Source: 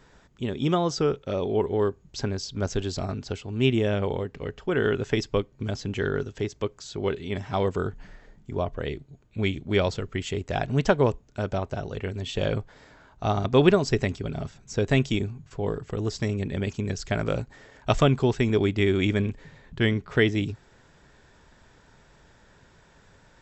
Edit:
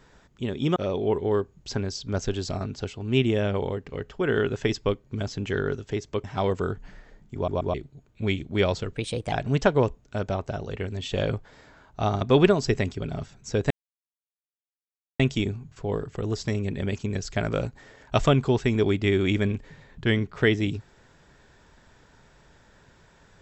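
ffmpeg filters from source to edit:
-filter_complex "[0:a]asplit=9[a][b][c][d][e][f][g][h][i];[a]atrim=end=0.762[j];[b]atrim=start=1.238:end=6.722[k];[c]atrim=start=7.398:end=8.642[l];[d]atrim=start=8.508:end=8.642[m];[e]atrim=start=8.508:end=8.642[n];[f]atrim=start=8.898:end=10.114[o];[g]atrim=start=10.11:end=10.56,asetpts=PTS-STARTPTS,asetrate=52920,aresample=44100[p];[h]atrim=start=10.556:end=14.94,asetpts=PTS-STARTPTS,afade=t=out:st=4.38:d=0.004:c=hsin,apad=pad_dur=1.49[q];[i]atrim=start=14.94,asetpts=PTS-STARTPTS,afade=t=in:d=0.004:c=hsin[r];[j][k]acrossfade=d=0.004:c1=hsin:c2=hsin[s];[s][l]acrossfade=d=0.004:c1=hsin:c2=hsin[t];[t][m]acrossfade=d=0.004:c1=hsin:c2=hsin[u];[u][n]acrossfade=d=0.004:c1=hsin:c2=hsin[v];[v][o]acrossfade=d=0.004:c1=hsin:c2=hsin[w];[w][p]acrossfade=d=0.004:c1=hsin:c2=hsin[x];[q][r]concat=n=2:v=0:a=1[y];[x][y]acrossfade=d=0.004:c1=hsin:c2=hsin"

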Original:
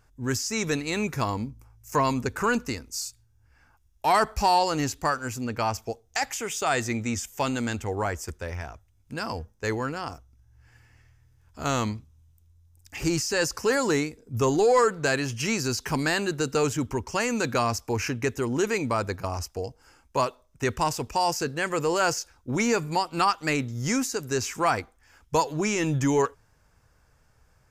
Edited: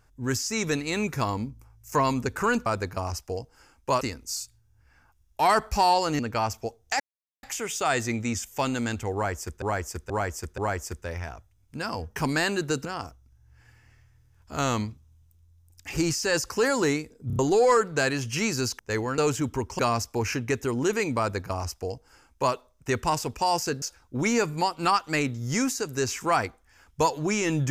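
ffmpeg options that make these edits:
-filter_complex "[0:a]asplit=18[a][b][c][d][e][f][g][h][i][j][k][l][m][n][o][p][q][r];[a]atrim=end=2.662[s];[b]atrim=start=18.928:end=20.282[t];[c]atrim=start=2.658:end=4.842[u];[d]atrim=start=5.428:end=6.24,asetpts=PTS-STARTPTS,afade=t=out:st=0.808:d=0.004:c=hsin,apad=pad_dur=0.43[v];[e]atrim=start=6.24:end=8.432,asetpts=PTS-STARTPTS,afade=t=in:d=0.004:c=hsin[w];[f]atrim=start=7.948:end=8.432[x];[g]atrim=start=7.948:end=8.432[y];[h]atrim=start=7.948:end=9.532[z];[i]atrim=start=15.858:end=16.552[aa];[j]atrim=start=9.918:end=14.372[ab];[k]atrim=start=14.338:end=14.372[ac];[l]atrim=start=14.338:end=14.372[ad];[m]atrim=start=14.338:end=14.372[ae];[n]atrim=start=14.458:end=15.862[af];[o]atrim=start=9.528:end=9.922[ag];[p]atrim=start=16.548:end=17.162[ah];[q]atrim=start=17.528:end=21.562[ai];[r]atrim=start=22.158[aj];[s][t]acrossfade=d=0.004:c1=hsin:c2=hsin[ak];[ak][u]acrossfade=d=0.004:c1=hsin:c2=hsin[al];[v][w]concat=n=2:v=0:a=1[am];[al][am]acrossfade=d=0.004:c1=hsin:c2=hsin[an];[an][x]acrossfade=d=0.004:c1=hsin:c2=hsin[ao];[ao][y]acrossfade=d=0.004:c1=hsin:c2=hsin[ap];[ap][z]acrossfade=d=0.004:c1=hsin:c2=hsin[aq];[aq][aa]acrossfade=d=0.004:c1=hsin:c2=hsin[ar];[ar][ab]acrossfade=d=0.004:c1=hsin:c2=hsin[as];[as][ac]acrossfade=d=0.004:c1=hsin:c2=hsin[at];[at][ad]acrossfade=d=0.004:c1=hsin:c2=hsin[au];[au][ae]acrossfade=d=0.004:c1=hsin:c2=hsin[av];[av][af]acrossfade=d=0.004:c1=hsin:c2=hsin[aw];[aw][ag]acrossfade=d=0.004:c1=hsin:c2=hsin[ax];[ax][ah]acrossfade=d=0.004:c1=hsin:c2=hsin[ay];[ay][ai]acrossfade=d=0.004:c1=hsin:c2=hsin[az];[az][aj]acrossfade=d=0.004:c1=hsin:c2=hsin"

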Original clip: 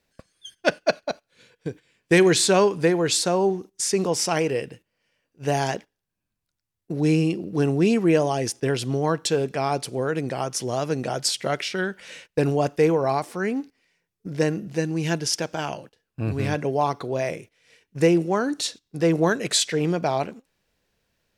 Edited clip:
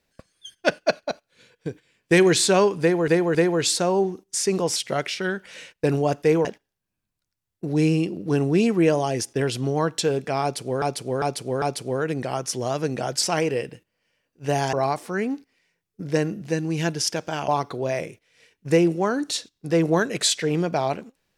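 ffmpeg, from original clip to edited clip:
-filter_complex "[0:a]asplit=11[a][b][c][d][e][f][g][h][i][j][k];[a]atrim=end=3.082[l];[b]atrim=start=2.808:end=3.082[m];[c]atrim=start=2.808:end=4.222[n];[d]atrim=start=11.298:end=12.992[o];[e]atrim=start=5.718:end=10.092[p];[f]atrim=start=9.688:end=10.092[q];[g]atrim=start=9.688:end=10.092[r];[h]atrim=start=9.688:end=11.302[s];[i]atrim=start=4.218:end=5.722[t];[j]atrim=start=12.988:end=15.742[u];[k]atrim=start=16.778[v];[l][m]acrossfade=d=0.004:c1=hsin:c2=hsin[w];[w][n]acrossfade=d=0.004:c1=hsin:c2=hsin[x];[x][o]acrossfade=d=0.004:c1=hsin:c2=hsin[y];[y][p]acrossfade=d=0.004:c1=hsin:c2=hsin[z];[z][q]acrossfade=d=0.004:c1=hsin:c2=hsin[aa];[aa][r]acrossfade=d=0.004:c1=hsin:c2=hsin[ab];[ab][s]acrossfade=d=0.004:c1=hsin:c2=hsin[ac];[ac][t]acrossfade=d=0.004:c1=hsin:c2=hsin[ad];[ad][u]acrossfade=d=0.004:c1=hsin:c2=hsin[ae];[ae][v]acrossfade=d=0.004:c1=hsin:c2=hsin"

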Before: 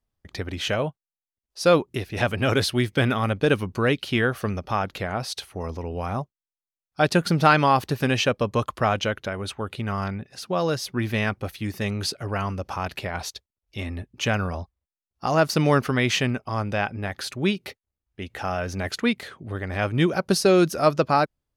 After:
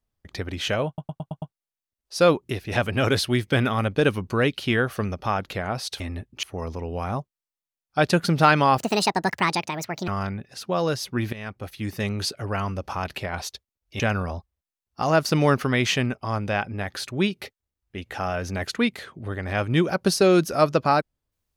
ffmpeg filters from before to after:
-filter_complex "[0:a]asplit=12[a][b][c][d][e][f][g][h][i][j][k][l];[a]atrim=end=0.982[m];[b]atrim=start=0.868:end=0.982[n];[c]atrim=start=0.868:end=0.982[o];[d]atrim=start=0.868:end=0.982[p];[e]atrim=start=0.868:end=0.982[q];[f]atrim=start=0.868:end=5.452[r];[g]atrim=start=13.808:end=14.242[s];[h]atrim=start=5.448:end=7.804[t];[i]atrim=start=7.8:end=9.89,asetpts=PTS-STARTPTS,asetrate=71001,aresample=44100[u];[j]atrim=start=9.886:end=11.14,asetpts=PTS-STARTPTS,afade=t=out:st=1.25:d=0.004:c=hsin:silence=0.133352[v];[k]atrim=start=11.14:end=13.812,asetpts=PTS-STARTPTS,afade=t=in:d=0.57:silence=0.133352[w];[l]atrim=start=14.238[x];[m][n]acrossfade=d=0.004:c1=hsin:c2=hsin[y];[y][o]acrossfade=d=0.004:c1=hsin:c2=hsin[z];[z][p]acrossfade=d=0.004:c1=hsin:c2=hsin[aa];[aa][q]acrossfade=d=0.004:c1=hsin:c2=hsin[ab];[ab][r]acrossfade=d=0.004:c1=hsin:c2=hsin[ac];[ac][s]acrossfade=d=0.004:c1=hsin:c2=hsin[ad];[ad][t]acrossfade=d=0.004:c1=hsin:c2=hsin[ae];[ae][u]acrossfade=d=0.004:c1=hsin:c2=hsin[af];[v][w]concat=n=2:v=0:a=1[ag];[af][ag]acrossfade=d=0.004:c1=hsin:c2=hsin[ah];[ah][x]acrossfade=d=0.004:c1=hsin:c2=hsin"

